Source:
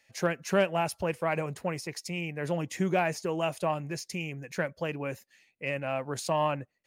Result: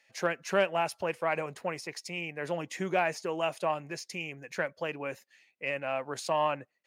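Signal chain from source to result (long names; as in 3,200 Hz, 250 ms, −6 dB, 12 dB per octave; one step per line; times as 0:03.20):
high-pass filter 500 Hz 6 dB per octave
high-shelf EQ 7,300 Hz −9.5 dB
level +1.5 dB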